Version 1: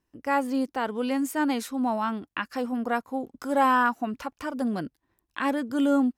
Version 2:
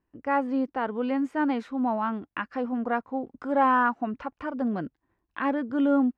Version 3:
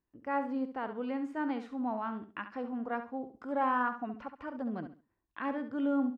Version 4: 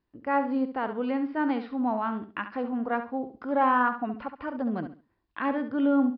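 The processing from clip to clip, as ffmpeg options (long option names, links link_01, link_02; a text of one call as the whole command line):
ffmpeg -i in.wav -af "lowpass=2100" out.wav
ffmpeg -i in.wav -af "aecho=1:1:68|136|204:0.316|0.0791|0.0198,volume=-8.5dB" out.wav
ffmpeg -i in.wav -af "aresample=11025,aresample=44100,volume=7dB" out.wav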